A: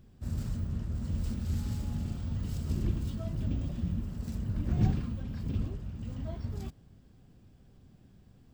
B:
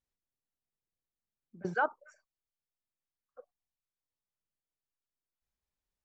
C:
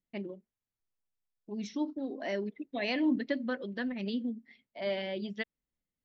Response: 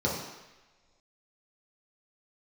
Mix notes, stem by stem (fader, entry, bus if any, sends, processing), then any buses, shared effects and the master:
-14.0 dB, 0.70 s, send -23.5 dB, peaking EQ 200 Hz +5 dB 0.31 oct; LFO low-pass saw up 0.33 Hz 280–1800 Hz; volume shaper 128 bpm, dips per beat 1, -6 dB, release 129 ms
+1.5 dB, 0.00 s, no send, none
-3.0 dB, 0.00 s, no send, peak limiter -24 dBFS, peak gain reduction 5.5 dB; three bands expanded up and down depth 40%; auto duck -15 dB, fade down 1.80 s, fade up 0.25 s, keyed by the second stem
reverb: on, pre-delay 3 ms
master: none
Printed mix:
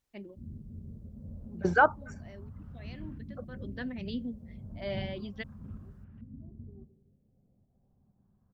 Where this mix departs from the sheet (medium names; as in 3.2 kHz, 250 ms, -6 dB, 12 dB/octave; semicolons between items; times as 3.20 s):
stem A: entry 0.70 s -> 0.15 s; stem B +1.5 dB -> +8.0 dB